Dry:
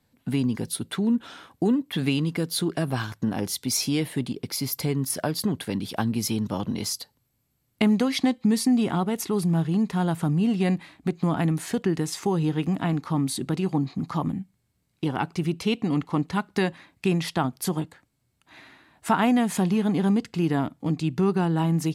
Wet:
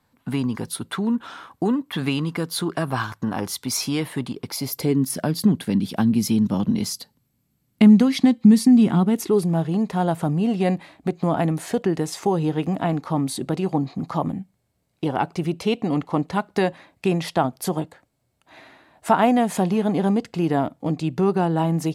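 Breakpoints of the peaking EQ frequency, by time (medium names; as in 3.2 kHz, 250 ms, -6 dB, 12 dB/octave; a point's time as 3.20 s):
peaking EQ +9.5 dB 1.1 oct
4.44 s 1.1 kHz
5.09 s 200 Hz
8.99 s 200 Hz
9.54 s 610 Hz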